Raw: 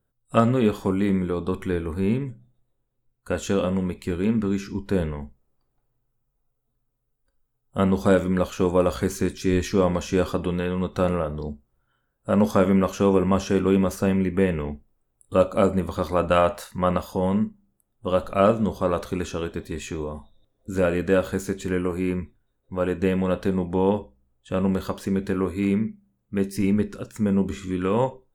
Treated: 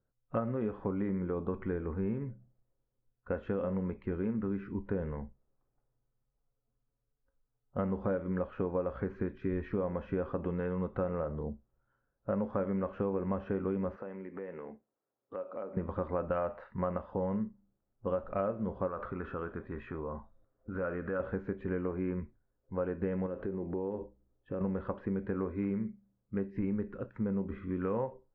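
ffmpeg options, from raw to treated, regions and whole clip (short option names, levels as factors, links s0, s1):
-filter_complex "[0:a]asettb=1/sr,asplit=3[s0][s1][s2];[s0]atrim=end=13.964[s3];[s1]atrim=start=13.96:end=15.77,asetpts=PTS-STARTPTS,afade=t=in:d=0.004:c=qsin,afade=t=out:st=1.806:d=0.004:c=qsin,highpass=310,lowpass=7800,acompressor=threshold=0.02:ratio=4:attack=3.2:release=140:knee=1:detection=peak[s4];[s2]atrim=start=15.766[s5];[s3][s4]acrossfade=d=0.004:c1=hsin:c2=qsin[s6];[s6][s5]acrossfade=d=0.004:c1=qsin:c2=hsin,asettb=1/sr,asplit=3[s7][s8][s9];[s7]atrim=end=18.874[s10];[s8]atrim=start=18.87:end=21.2,asetpts=PTS-STARTPTS,afade=t=in:d=0.004:c=qsin,afade=t=out:st=2.326:d=0.004:c=qsin,acompressor=threshold=0.0355:ratio=3:attack=3.2:release=140:knee=1:detection=peak,equalizer=f=1300:t=o:w=0.7:g=10[s11];[s9]atrim=start=21.196[s12];[s10][s11]acrossfade=d=0.004:c1=hsin:c2=qsin[s13];[s13][s12]acrossfade=d=0.004:c1=qsin:c2=hsin,asettb=1/sr,asplit=3[s14][s15][s16];[s14]atrim=end=23.264[s17];[s15]atrim=start=23.26:end=24.61,asetpts=PTS-STARTPTS,afade=t=in:d=0.004:c=qsin,afade=t=out:st=1.346:d=0.004:c=qsin,acompressor=threshold=0.0316:ratio=6:attack=3.2:release=140:knee=1:detection=peak,equalizer=f=350:w=2.1:g=9.5[s18];[s16]atrim=start=24.606[s19];[s17][s18]acrossfade=d=0.004:c1=hsin:c2=qsin[s20];[s20][s19]acrossfade=d=0.004:c1=qsin:c2=hsin,lowpass=f=1900:w=0.5412,lowpass=f=1900:w=1.3066,equalizer=f=540:w=3.8:g=3.5,acompressor=threshold=0.0708:ratio=6,volume=0.473"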